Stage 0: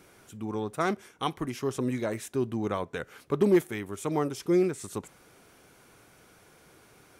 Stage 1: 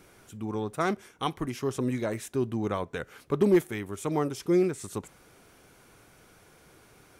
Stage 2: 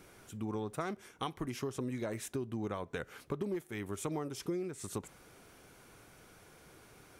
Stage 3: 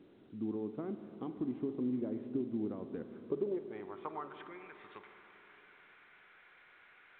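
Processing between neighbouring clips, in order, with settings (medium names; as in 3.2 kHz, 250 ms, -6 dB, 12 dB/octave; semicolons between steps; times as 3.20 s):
bass shelf 66 Hz +7.5 dB
compression 12:1, threshold -32 dBFS, peak gain reduction 16 dB; trim -1.5 dB
band-pass sweep 280 Hz -> 1.9 kHz, 3.12–4.57 s; spring tank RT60 4 s, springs 48/55 ms, chirp 75 ms, DRR 8.5 dB; trim +5 dB; A-law 64 kbps 8 kHz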